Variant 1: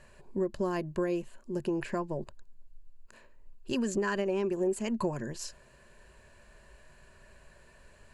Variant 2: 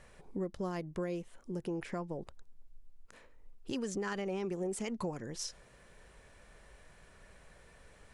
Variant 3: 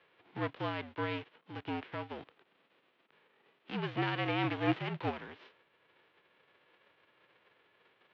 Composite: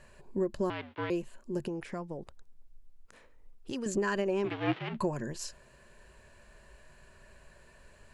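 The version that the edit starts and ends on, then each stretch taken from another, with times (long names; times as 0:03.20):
1
0:00.70–0:01.10: punch in from 3
0:01.68–0:03.86: punch in from 2
0:04.48–0:04.96: punch in from 3, crossfade 0.10 s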